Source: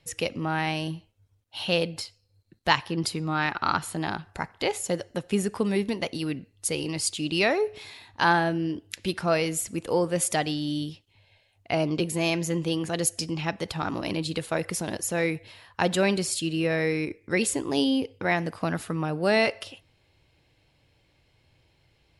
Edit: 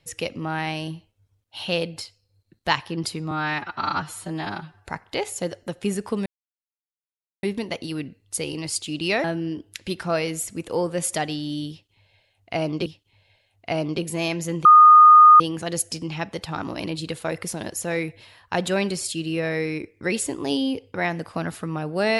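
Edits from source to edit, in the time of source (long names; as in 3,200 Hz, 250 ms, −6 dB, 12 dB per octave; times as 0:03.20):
0:03.31–0:04.35: time-stretch 1.5×
0:05.74: splice in silence 1.17 s
0:07.55–0:08.42: remove
0:10.88–0:12.04: repeat, 2 plays
0:12.67: insert tone 1,230 Hz −6.5 dBFS 0.75 s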